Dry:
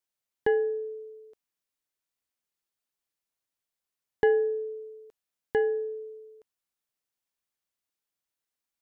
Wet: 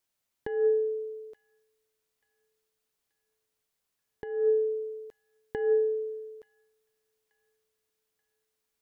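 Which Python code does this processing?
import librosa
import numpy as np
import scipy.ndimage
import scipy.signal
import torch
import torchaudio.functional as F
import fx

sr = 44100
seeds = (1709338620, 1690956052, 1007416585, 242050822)

p1 = fx.low_shelf(x, sr, hz=240.0, db=3.5)
p2 = fx.over_compress(p1, sr, threshold_db=-27.0, ratio=-0.5)
p3 = p2 + fx.echo_wet_highpass(p2, sr, ms=881, feedback_pct=44, hz=1900.0, wet_db=-22.0, dry=0)
y = F.gain(torch.from_numpy(p3), 2.5).numpy()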